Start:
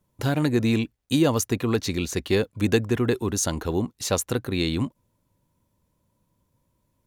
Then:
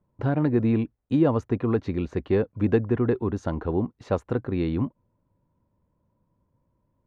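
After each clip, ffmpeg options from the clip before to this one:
ffmpeg -i in.wav -af "lowpass=1300" out.wav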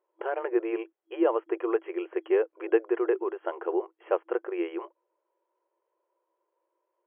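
ffmpeg -i in.wav -af "afftfilt=real='re*between(b*sr/4096,330,3300)':imag='im*between(b*sr/4096,330,3300)':win_size=4096:overlap=0.75" out.wav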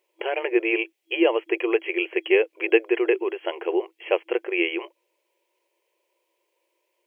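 ffmpeg -i in.wav -af "highshelf=frequency=1800:width_type=q:width=3:gain=10,volume=5dB" out.wav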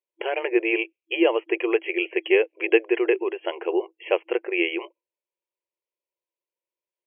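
ffmpeg -i in.wav -af "afftdn=noise_reduction=23:noise_floor=-46" out.wav

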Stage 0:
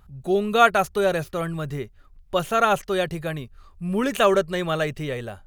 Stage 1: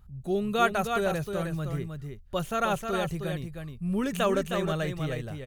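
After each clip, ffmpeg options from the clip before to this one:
ffmpeg -i in.wav -af "bass=frequency=250:gain=8,treble=frequency=4000:gain=3,aecho=1:1:312:0.501,volume=-8.5dB" out.wav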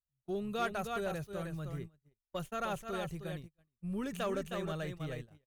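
ffmpeg -i in.wav -af "agate=range=-38dB:threshold=-33dB:ratio=16:detection=peak,asoftclip=type=tanh:threshold=-17.5dB,volume=-8.5dB" out.wav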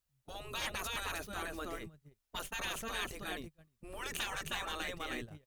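ffmpeg -i in.wav -af "afftfilt=real='re*lt(hypot(re,im),0.0282)':imag='im*lt(hypot(re,im),0.0282)':win_size=1024:overlap=0.75,volume=9dB" out.wav

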